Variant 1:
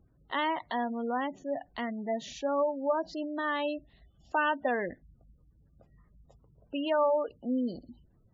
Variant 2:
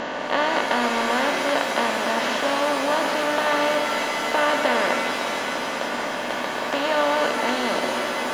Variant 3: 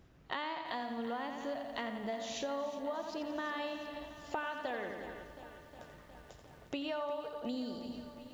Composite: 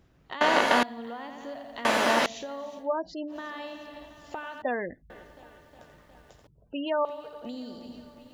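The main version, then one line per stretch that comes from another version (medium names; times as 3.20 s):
3
0.41–0.83 s: from 2
1.85–2.26 s: from 2
2.84–3.32 s: from 1, crossfade 0.10 s
4.62–5.10 s: from 1
6.47–7.05 s: from 1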